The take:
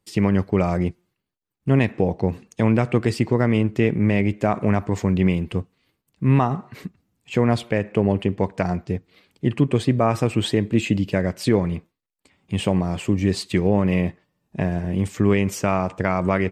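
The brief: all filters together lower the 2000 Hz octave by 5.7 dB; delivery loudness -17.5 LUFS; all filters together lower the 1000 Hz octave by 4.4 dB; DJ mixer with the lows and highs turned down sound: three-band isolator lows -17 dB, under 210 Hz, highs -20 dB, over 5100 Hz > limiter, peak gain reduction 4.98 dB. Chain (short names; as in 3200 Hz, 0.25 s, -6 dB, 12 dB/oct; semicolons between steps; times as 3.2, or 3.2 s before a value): three-band isolator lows -17 dB, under 210 Hz, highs -20 dB, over 5100 Hz; bell 1000 Hz -5 dB; bell 2000 Hz -5.5 dB; gain +10 dB; limiter -4.5 dBFS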